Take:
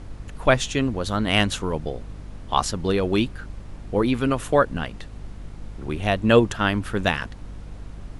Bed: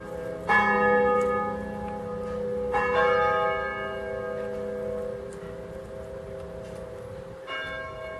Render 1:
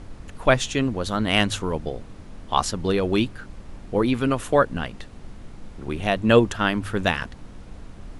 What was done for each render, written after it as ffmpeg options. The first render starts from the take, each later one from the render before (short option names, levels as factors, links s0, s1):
-af "bandreject=f=50:t=h:w=4,bandreject=f=100:t=h:w=4,bandreject=f=150:t=h:w=4"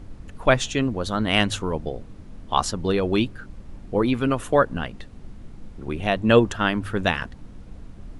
-af "afftdn=nr=6:nf=-42"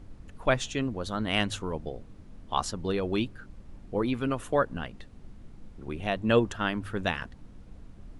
-af "volume=0.447"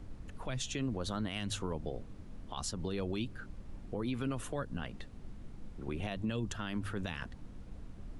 -filter_complex "[0:a]acrossover=split=230|3000[s0][s1][s2];[s1]acompressor=threshold=0.0224:ratio=6[s3];[s0][s3][s2]amix=inputs=3:normalize=0,alimiter=level_in=1.33:limit=0.0631:level=0:latency=1:release=74,volume=0.75"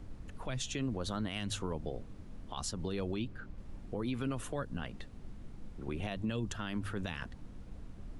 -filter_complex "[0:a]asettb=1/sr,asplit=3[s0][s1][s2];[s0]atrim=end=3.144[s3];[s1]atrim=start=3.14:end=3.58,asetpts=PTS-STARTPTS,afade=t=in:d=0.004:c=qsin,afade=t=out:st=0.436:d=0.004:c=qsin,lowpass=f=3400:p=1[s4];[s2]atrim=start=3.576[s5];[s3][s4]acrossfade=d=0.004:c1=hsin:c2=qsin[s6];[s6][s5]acrossfade=d=0.004:c1=qsin:c2=hsin"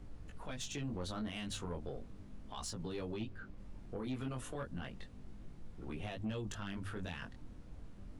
-af "flanger=delay=17.5:depth=6:speed=0.34,asoftclip=type=tanh:threshold=0.0237"